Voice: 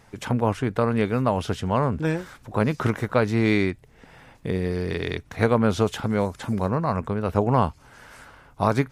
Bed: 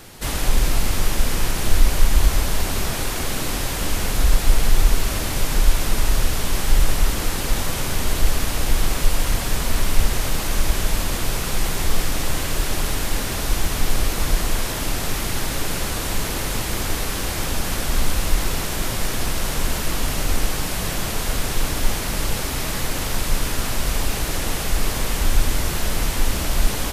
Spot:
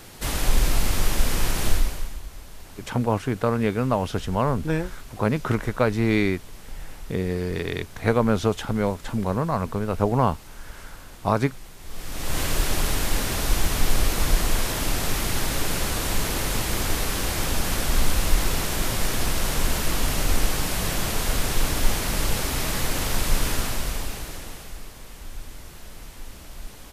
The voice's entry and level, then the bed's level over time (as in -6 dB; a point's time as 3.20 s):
2.65 s, -0.5 dB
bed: 1.68 s -2 dB
2.23 s -21.5 dB
11.79 s -21.5 dB
12.40 s -1 dB
23.53 s -1 dB
24.92 s -19.5 dB